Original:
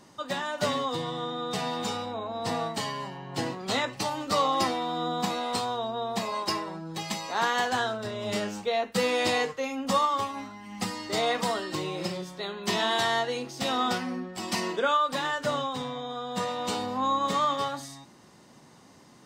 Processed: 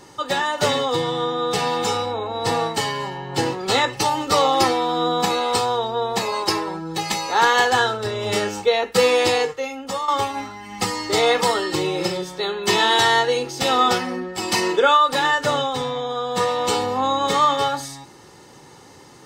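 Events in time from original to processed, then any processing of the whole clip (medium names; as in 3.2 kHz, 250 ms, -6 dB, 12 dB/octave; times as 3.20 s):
8.94–10.08 s: fade out, to -12 dB
whole clip: comb 2.3 ms, depth 56%; trim +8.5 dB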